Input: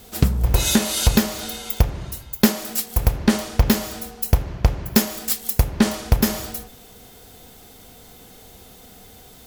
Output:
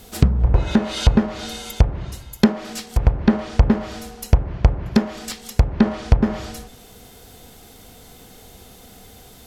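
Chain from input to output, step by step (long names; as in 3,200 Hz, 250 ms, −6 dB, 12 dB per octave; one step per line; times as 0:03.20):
low-shelf EQ 160 Hz +2 dB
treble cut that deepens with the level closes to 1,300 Hz, closed at −13 dBFS
level +1 dB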